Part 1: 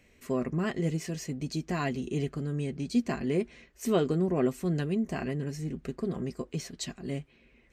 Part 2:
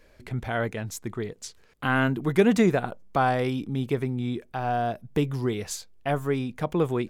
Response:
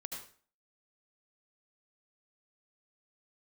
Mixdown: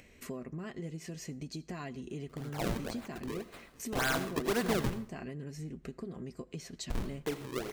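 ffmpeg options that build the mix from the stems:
-filter_complex "[0:a]agate=range=-15dB:threshold=-55dB:ratio=16:detection=peak,acompressor=threshold=-37dB:ratio=5,volume=-2.5dB,asplit=2[a][b];[b]volume=-18.5dB[c];[1:a]bandpass=f=1.3k:t=q:w=0.84:csg=0,acrusher=samples=36:mix=1:aa=0.000001:lfo=1:lforange=57.6:lforate=1.9,aeval=exprs='0.075*(abs(mod(val(0)/0.075+3,4)-2)-1)':c=same,adelay=2100,volume=-4dB,asplit=3[d][e][f];[d]atrim=end=4.94,asetpts=PTS-STARTPTS,afade=t=out:st=4.936:d=0.004:c=hsin[g];[e]atrim=start=4.94:end=6.9,asetpts=PTS-STARTPTS,volume=0[h];[f]atrim=start=6.9,asetpts=PTS-STARTPTS,afade=t=in:d=0.004:c=hsin[i];[g][h][i]concat=n=3:v=0:a=1,asplit=2[j][k];[k]volume=-3.5dB[l];[2:a]atrim=start_sample=2205[m];[c][l]amix=inputs=2:normalize=0[n];[n][m]afir=irnorm=-1:irlink=0[o];[a][j][o]amix=inputs=3:normalize=0,acompressor=mode=upward:threshold=-42dB:ratio=2.5"

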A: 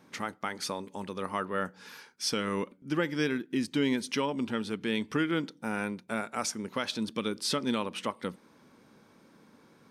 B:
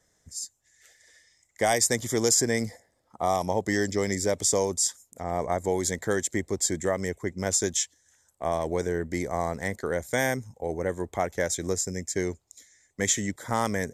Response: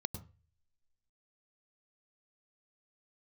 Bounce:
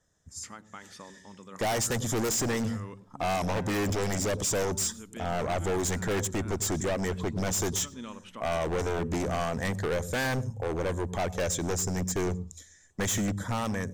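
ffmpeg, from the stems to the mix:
-filter_complex "[0:a]adelay=300,volume=-10dB,asplit=2[a][b];[b]volume=-13dB[c];[1:a]bandreject=f=2.1k:w=6,dynaudnorm=f=160:g=9:m=9.5dB,asoftclip=type=tanh:threshold=-17dB,volume=-2.5dB,asplit=3[d][e][f];[e]volume=-13.5dB[g];[f]apad=whole_len=449985[h];[a][h]sidechaincompress=threshold=-27dB:ratio=8:attack=16:release=476[i];[2:a]atrim=start_sample=2205[j];[c][g]amix=inputs=2:normalize=0[k];[k][j]afir=irnorm=-1:irlink=0[l];[i][d][l]amix=inputs=3:normalize=0,highshelf=f=8k:g=-8.5,aeval=exprs='0.0631*(abs(mod(val(0)/0.0631+3,4)-2)-1)':c=same"

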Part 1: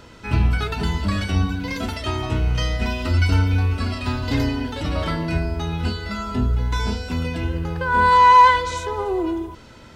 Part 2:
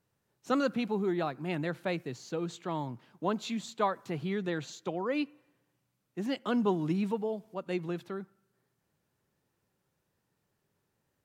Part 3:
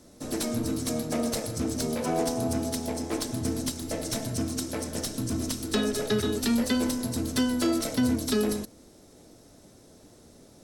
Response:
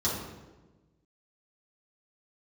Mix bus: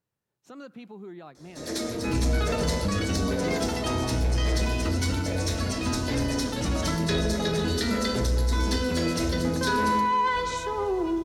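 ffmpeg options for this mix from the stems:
-filter_complex "[0:a]alimiter=limit=-15.5dB:level=0:latency=1:release=17,adelay=1800,volume=-3.5dB,asplit=2[a][b];[b]volume=-23.5dB[c];[1:a]alimiter=level_in=3dB:limit=-24dB:level=0:latency=1:release=159,volume=-3dB,volume=-7.5dB[d];[2:a]equalizer=f=500:t=o:w=1:g=9,equalizer=f=2k:t=o:w=1:g=11,equalizer=f=4k:t=o:w=1:g=8,equalizer=f=8k:t=o:w=1:g=6,adelay=1350,volume=-13dB,asplit=2[e][f];[f]volume=-6dB[g];[3:a]atrim=start_sample=2205[h];[c][g]amix=inputs=2:normalize=0[i];[i][h]afir=irnorm=-1:irlink=0[j];[a][d][e][j]amix=inputs=4:normalize=0,asoftclip=type=tanh:threshold=-15dB"

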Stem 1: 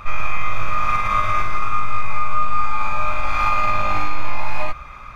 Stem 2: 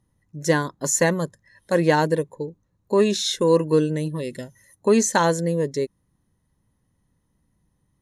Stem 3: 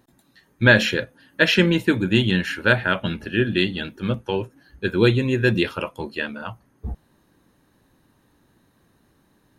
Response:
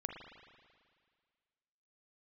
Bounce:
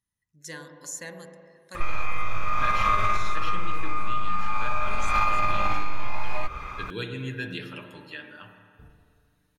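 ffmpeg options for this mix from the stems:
-filter_complex "[0:a]adelay=1750,volume=1.5dB[a];[1:a]volume=-10dB,asplit=2[b][c];[c]volume=-10.5dB[d];[2:a]aecho=1:1:6.8:0.58,adelay=1950,volume=-11dB,asplit=2[e][f];[f]volume=-4.5dB[g];[b][e]amix=inputs=2:normalize=0,highpass=1.4k,acompressor=threshold=-43dB:ratio=2,volume=0dB[h];[3:a]atrim=start_sample=2205[i];[d][g]amix=inputs=2:normalize=0[j];[j][i]afir=irnorm=-1:irlink=0[k];[a][h][k]amix=inputs=3:normalize=0,acompressor=threshold=-17dB:ratio=6"

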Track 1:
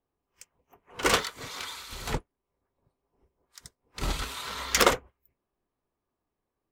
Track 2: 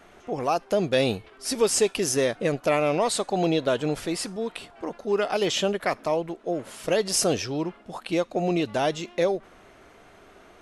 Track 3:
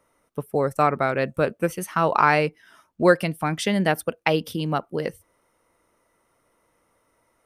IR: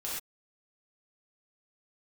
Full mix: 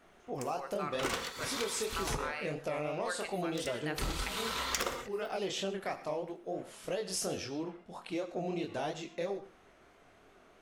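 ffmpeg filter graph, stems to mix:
-filter_complex "[0:a]volume=0dB,asplit=2[a][b];[b]volume=-8.5dB[c];[1:a]acontrast=87,flanger=delay=20:depth=7.1:speed=3,volume=-15dB,asplit=2[d][e];[e]volume=-13.5dB[f];[2:a]highpass=1.1k,volume=-12.5dB,asplit=2[g][h];[h]volume=-10.5dB[i];[3:a]atrim=start_sample=2205[j];[c][f][i]amix=inputs=3:normalize=0[k];[k][j]afir=irnorm=-1:irlink=0[l];[a][d][g][l]amix=inputs=4:normalize=0,acompressor=threshold=-31dB:ratio=12"

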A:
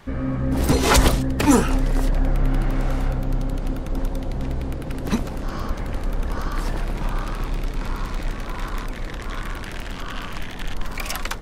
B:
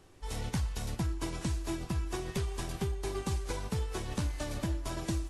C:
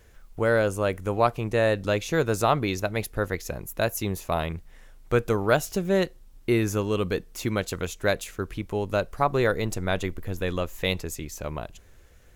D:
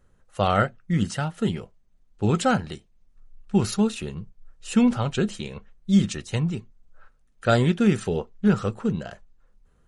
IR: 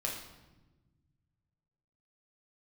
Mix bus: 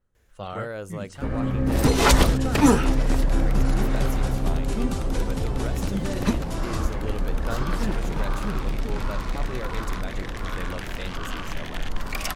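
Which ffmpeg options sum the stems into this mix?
-filter_complex "[0:a]adelay=1150,volume=-1dB[a];[1:a]adelay=1650,volume=2.5dB[b];[2:a]alimiter=limit=-17.5dB:level=0:latency=1:release=101,adelay=150,volume=-8dB[c];[3:a]volume=-13dB[d];[a][b][c][d]amix=inputs=4:normalize=0,adynamicequalizer=threshold=0.00708:dfrequency=6400:dqfactor=0.7:tfrequency=6400:tqfactor=0.7:attack=5:release=100:ratio=0.375:range=2:mode=cutabove:tftype=highshelf"

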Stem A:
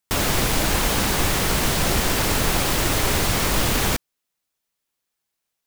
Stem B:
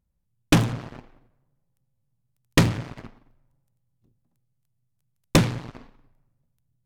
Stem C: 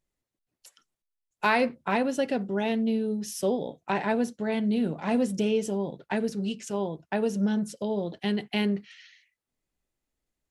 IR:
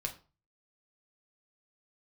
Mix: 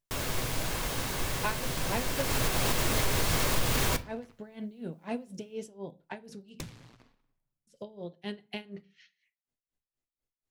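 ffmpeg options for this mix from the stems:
-filter_complex "[0:a]volume=-6dB,afade=t=in:st=2.14:d=0.56:silence=0.298538,asplit=2[a][b];[b]volume=-3dB[c];[1:a]highshelf=f=2.4k:g=11,bandreject=f=60:t=h:w=6,bandreject=f=120:t=h:w=6,acrossover=split=130[d][e];[e]acompressor=threshold=-22dB:ratio=6[f];[d][f]amix=inputs=2:normalize=0,adelay=1250,volume=-18.5dB[g];[2:a]aeval=exprs='val(0)*pow(10,-21*(0.5-0.5*cos(2*PI*4.1*n/s))/20)':c=same,volume=-8.5dB,asplit=3[h][i][j];[h]atrim=end=6.63,asetpts=PTS-STARTPTS,afade=t=out:st=6.626:d=0.004:c=hsin[k];[i]atrim=start=6.63:end=7.67,asetpts=PTS-STARTPTS,volume=0[l];[j]atrim=start=7.67,asetpts=PTS-STARTPTS,afade=t=in:d=0.004:c=hsin[m];[k][l][m]concat=n=3:v=0:a=1,asplit=2[n][o];[o]volume=-8.5dB[p];[3:a]atrim=start_sample=2205[q];[c][p]amix=inputs=2:normalize=0[r];[r][q]afir=irnorm=-1:irlink=0[s];[a][g][n][s]amix=inputs=4:normalize=0,alimiter=limit=-16.5dB:level=0:latency=1:release=369"

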